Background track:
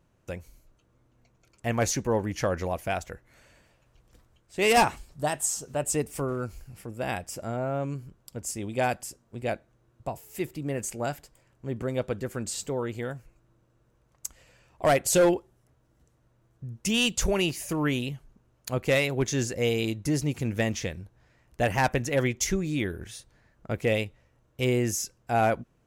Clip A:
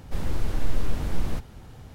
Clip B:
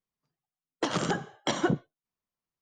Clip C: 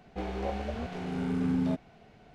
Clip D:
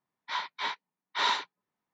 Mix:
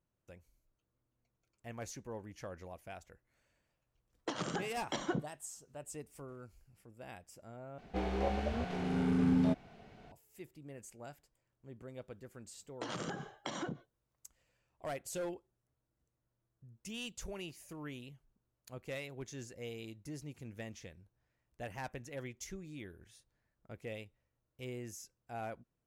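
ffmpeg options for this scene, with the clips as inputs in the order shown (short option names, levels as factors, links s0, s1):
-filter_complex "[2:a]asplit=2[s0][s1];[0:a]volume=0.112[s2];[s1]acompressor=threshold=0.0178:ratio=6:attack=3.2:release=140:knee=1:detection=peak[s3];[s2]asplit=2[s4][s5];[s4]atrim=end=7.784[s6];[3:a]atrim=end=2.34,asetpts=PTS-STARTPTS,volume=0.944[s7];[s5]atrim=start=10.116[s8];[s0]atrim=end=2.61,asetpts=PTS-STARTPTS,volume=0.335,afade=t=in:d=0.004:c=hsin,afade=t=out:st=2.606:d=0.004:c=hsin,adelay=152145S[s9];[s3]atrim=end=2.61,asetpts=PTS-STARTPTS,volume=0.794,afade=t=in:d=0.004:c=hsin,afade=t=out:st=2.606:d=0.004:c=hsin,adelay=11990[s10];[s6][s7]acrossfade=d=0.004:c1=hsin:c2=hsin[s11];[s11][s8]acrossfade=d=0.004:c1=hsin:c2=hsin[s12];[s12][s9][s10]amix=inputs=3:normalize=0"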